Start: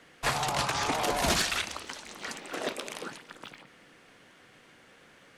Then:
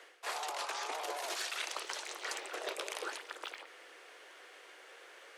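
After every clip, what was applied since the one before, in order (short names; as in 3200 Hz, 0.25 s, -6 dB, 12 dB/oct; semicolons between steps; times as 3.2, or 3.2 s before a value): steep high-pass 360 Hz 48 dB/oct; reverse; compressor 16:1, threshold -38 dBFS, peak gain reduction 16 dB; reverse; gain +2.5 dB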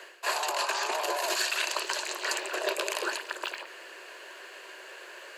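ripple EQ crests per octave 1.4, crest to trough 8 dB; gain +8.5 dB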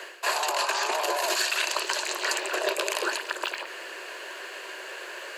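compressor 1.5:1, threshold -37 dBFS, peak gain reduction 5 dB; gain +7 dB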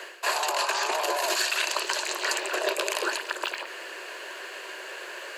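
HPF 130 Hz 24 dB/oct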